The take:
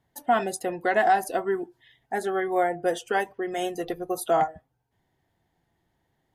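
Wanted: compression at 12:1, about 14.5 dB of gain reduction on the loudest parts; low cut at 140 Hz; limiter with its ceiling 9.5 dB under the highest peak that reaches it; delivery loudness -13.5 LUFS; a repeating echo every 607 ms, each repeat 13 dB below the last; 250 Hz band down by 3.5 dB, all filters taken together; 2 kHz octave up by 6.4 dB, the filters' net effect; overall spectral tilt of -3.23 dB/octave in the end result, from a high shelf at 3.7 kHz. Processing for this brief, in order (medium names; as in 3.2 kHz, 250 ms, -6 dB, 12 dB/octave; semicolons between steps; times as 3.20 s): high-pass 140 Hz; peaking EQ 250 Hz -6.5 dB; peaking EQ 2 kHz +7 dB; treble shelf 3.7 kHz +5 dB; compression 12:1, threshold -30 dBFS; peak limiter -29 dBFS; feedback delay 607 ms, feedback 22%, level -13 dB; trim +26 dB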